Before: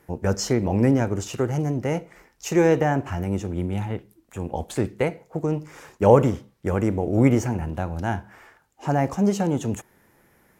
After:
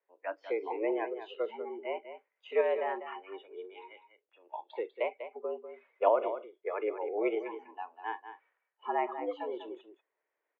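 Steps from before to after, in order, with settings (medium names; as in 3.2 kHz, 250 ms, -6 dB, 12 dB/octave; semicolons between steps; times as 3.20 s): de-esser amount 70%; spectral noise reduction 19 dB; random-step tremolo 2.3 Hz; delay 196 ms -10.5 dB; mistuned SSB +94 Hz 300–3300 Hz; trim -5 dB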